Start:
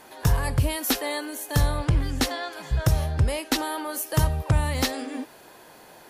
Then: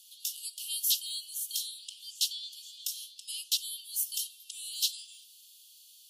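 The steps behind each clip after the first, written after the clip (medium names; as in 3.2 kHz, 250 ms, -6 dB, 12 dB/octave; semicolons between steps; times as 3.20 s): steep high-pass 2.9 kHz 96 dB/octave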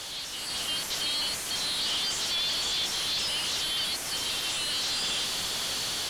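one-bit comparator; level rider gain up to 7 dB; distance through air 70 m; trim +4.5 dB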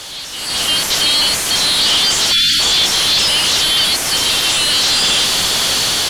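level rider gain up to 8 dB; spectral selection erased 2.33–2.60 s, 330–1300 Hz; trim +8 dB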